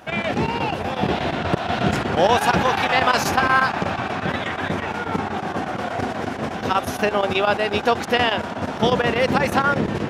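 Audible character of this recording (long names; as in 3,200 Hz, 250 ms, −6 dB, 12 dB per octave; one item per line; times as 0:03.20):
a quantiser's noise floor 12 bits, dither none
chopped level 8.3 Hz, depth 65%, duty 85%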